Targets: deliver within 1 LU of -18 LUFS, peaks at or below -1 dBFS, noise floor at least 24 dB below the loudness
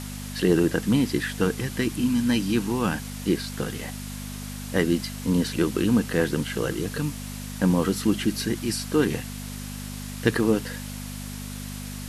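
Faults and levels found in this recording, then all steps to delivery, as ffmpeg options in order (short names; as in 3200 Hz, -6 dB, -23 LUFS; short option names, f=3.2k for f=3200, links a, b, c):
hum 50 Hz; harmonics up to 250 Hz; hum level -33 dBFS; noise floor -35 dBFS; noise floor target -50 dBFS; loudness -26.0 LUFS; peak -5.0 dBFS; loudness target -18.0 LUFS
-> -af "bandreject=f=50:t=h:w=4,bandreject=f=100:t=h:w=4,bandreject=f=150:t=h:w=4,bandreject=f=200:t=h:w=4,bandreject=f=250:t=h:w=4"
-af "afftdn=nr=15:nf=-35"
-af "volume=8dB,alimiter=limit=-1dB:level=0:latency=1"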